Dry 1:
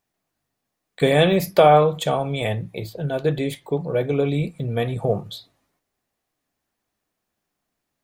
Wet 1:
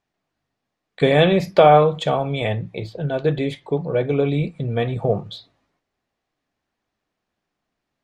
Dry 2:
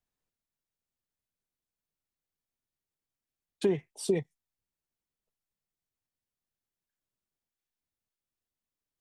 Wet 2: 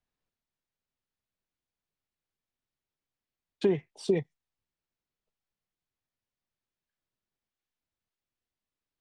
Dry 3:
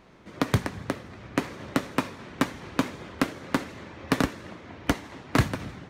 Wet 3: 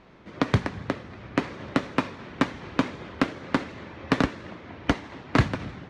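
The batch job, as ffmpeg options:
-af "lowpass=4.7k,volume=1.5dB"

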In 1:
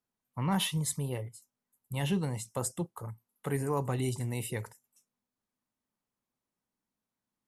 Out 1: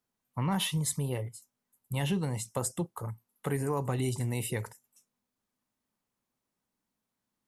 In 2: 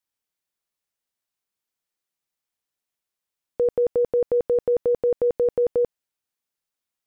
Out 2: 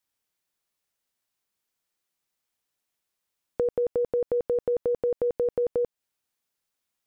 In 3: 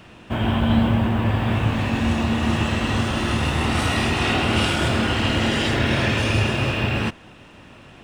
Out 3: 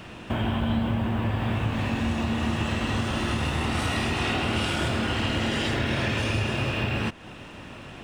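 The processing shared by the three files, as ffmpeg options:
-af "acompressor=threshold=-31dB:ratio=2.5,volume=3.5dB"

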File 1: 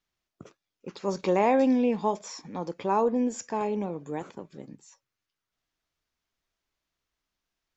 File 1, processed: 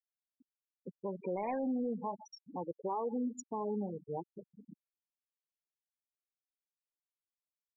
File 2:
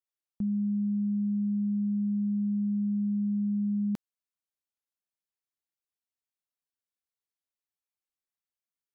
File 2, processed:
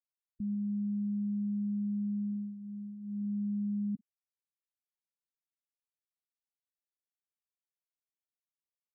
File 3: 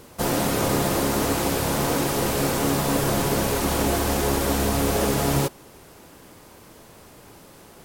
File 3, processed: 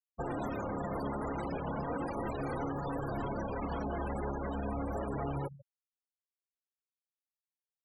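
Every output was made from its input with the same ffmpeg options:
-filter_complex "[0:a]aeval=exprs='val(0)+0.00178*(sin(2*PI*60*n/s)+sin(2*PI*2*60*n/s)/2+sin(2*PI*3*60*n/s)/3+sin(2*PI*4*60*n/s)/4+sin(2*PI*5*60*n/s)/5)':c=same,adynamicequalizer=threshold=0.0112:dfrequency=390:dqfactor=3.8:tfrequency=390:tqfactor=3.8:attack=5:release=100:ratio=0.375:range=2:mode=cutabove:tftype=bell,aecho=1:1:144|288:0.119|0.0226,asplit=2[a][b];[b]asoftclip=type=tanh:threshold=-22.5dB,volume=-4dB[c];[a][c]amix=inputs=2:normalize=0,flanger=delay=2.3:depth=2.7:regen=-61:speed=0.36:shape=sinusoidal,afftfilt=real='re*gte(hypot(re,im),0.0631)':imag='im*gte(hypot(re,im),0.0631)':win_size=1024:overlap=0.75,alimiter=level_in=0.5dB:limit=-24dB:level=0:latency=1:release=225,volume=-0.5dB,equalizer=f=2.4k:w=0.4:g=3.5,volume=-4.5dB"

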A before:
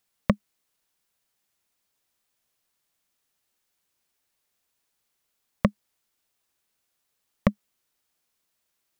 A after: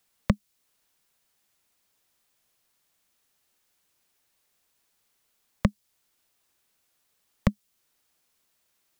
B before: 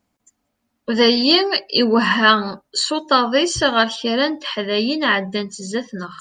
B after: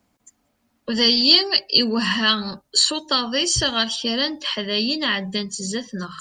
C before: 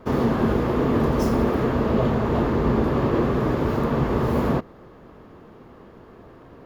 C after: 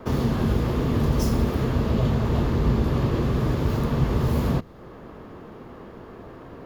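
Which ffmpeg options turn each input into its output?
-filter_complex "[0:a]acrossover=split=160|3000[a][b][c];[b]acompressor=threshold=-40dB:ratio=2[d];[a][d][c]amix=inputs=3:normalize=0,volume=4.5dB"

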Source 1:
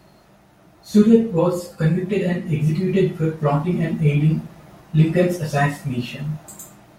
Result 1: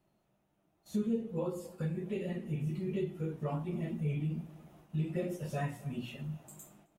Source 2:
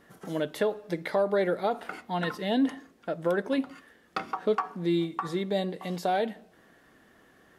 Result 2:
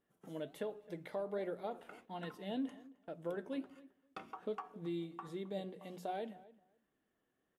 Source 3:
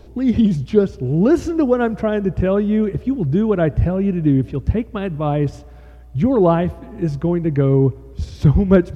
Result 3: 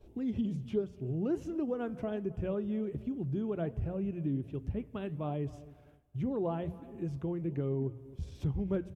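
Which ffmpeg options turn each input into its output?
-filter_complex "[0:a]aexciter=amount=1.4:drive=5.9:freq=2.5k,bandreject=f=60:t=h:w=6,bandreject=f=120:t=h:w=6,bandreject=f=180:t=h:w=6,agate=range=-10dB:threshold=-46dB:ratio=16:detection=peak,highshelf=f=3.8k:g=-11,flanger=delay=2.4:depth=6:regen=82:speed=1.3:shape=sinusoidal,equalizer=f=1.6k:t=o:w=2.1:g=-3.5,acompressor=threshold=-26dB:ratio=2,asplit=2[a][b];[b]adelay=265,lowpass=f=2k:p=1,volume=-19dB,asplit=2[c][d];[d]adelay=265,lowpass=f=2k:p=1,volume=0.16[e];[a][c][e]amix=inputs=3:normalize=0,volume=-8dB"

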